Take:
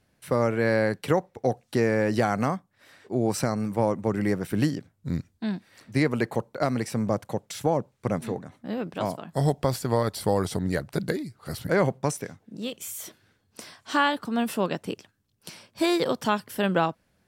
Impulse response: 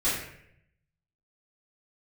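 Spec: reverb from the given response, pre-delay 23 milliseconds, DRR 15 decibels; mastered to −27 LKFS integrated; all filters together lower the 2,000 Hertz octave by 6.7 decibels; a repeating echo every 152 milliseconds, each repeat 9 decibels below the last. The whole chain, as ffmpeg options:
-filter_complex "[0:a]equalizer=frequency=2000:width_type=o:gain=-9,aecho=1:1:152|304|456|608:0.355|0.124|0.0435|0.0152,asplit=2[link_01][link_02];[1:a]atrim=start_sample=2205,adelay=23[link_03];[link_02][link_03]afir=irnorm=-1:irlink=0,volume=-26dB[link_04];[link_01][link_04]amix=inputs=2:normalize=0"

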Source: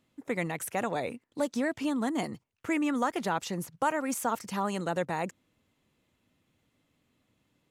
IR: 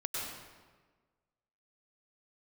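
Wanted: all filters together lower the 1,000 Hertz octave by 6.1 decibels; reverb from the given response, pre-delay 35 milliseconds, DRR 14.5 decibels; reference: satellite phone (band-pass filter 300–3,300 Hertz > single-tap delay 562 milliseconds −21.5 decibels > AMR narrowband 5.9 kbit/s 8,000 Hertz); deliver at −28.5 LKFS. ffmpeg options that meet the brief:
-filter_complex "[0:a]equalizer=frequency=1000:width_type=o:gain=-8,asplit=2[link_01][link_02];[1:a]atrim=start_sample=2205,adelay=35[link_03];[link_02][link_03]afir=irnorm=-1:irlink=0,volume=-18dB[link_04];[link_01][link_04]amix=inputs=2:normalize=0,highpass=300,lowpass=3300,aecho=1:1:562:0.0841,volume=8.5dB" -ar 8000 -c:a libopencore_amrnb -b:a 5900

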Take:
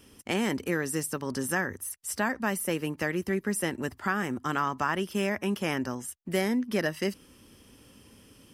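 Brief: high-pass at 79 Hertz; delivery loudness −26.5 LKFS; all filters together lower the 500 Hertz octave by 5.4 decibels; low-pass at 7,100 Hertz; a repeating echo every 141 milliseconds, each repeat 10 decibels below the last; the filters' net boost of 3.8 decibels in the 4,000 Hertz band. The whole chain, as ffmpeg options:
ffmpeg -i in.wav -af "highpass=79,lowpass=7100,equalizer=frequency=500:width_type=o:gain=-7.5,equalizer=frequency=4000:width_type=o:gain=6.5,aecho=1:1:141|282|423|564:0.316|0.101|0.0324|0.0104,volume=4.5dB" out.wav

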